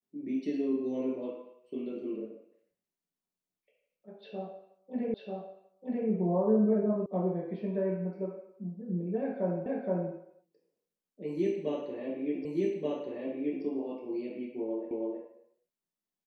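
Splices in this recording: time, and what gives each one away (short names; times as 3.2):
5.14 repeat of the last 0.94 s
7.06 sound cut off
9.66 repeat of the last 0.47 s
12.45 repeat of the last 1.18 s
14.91 repeat of the last 0.32 s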